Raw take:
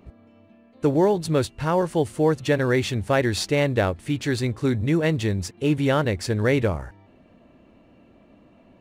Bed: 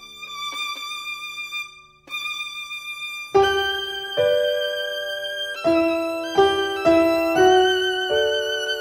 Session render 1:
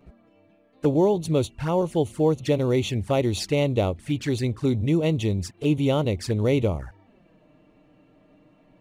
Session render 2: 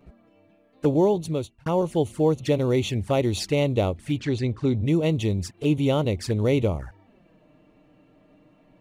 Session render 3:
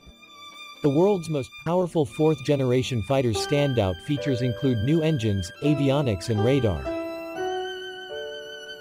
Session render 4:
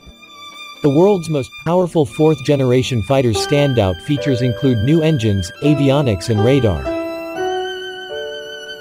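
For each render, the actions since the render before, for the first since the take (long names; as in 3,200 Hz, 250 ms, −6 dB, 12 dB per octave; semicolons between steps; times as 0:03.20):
flanger swept by the level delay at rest 7.3 ms, full sweep at −20 dBFS
0:01.13–0:01.66: fade out; 0:04.20–0:04.86: high-frequency loss of the air 85 metres
mix in bed −14 dB
level +8.5 dB; brickwall limiter −3 dBFS, peak gain reduction 1 dB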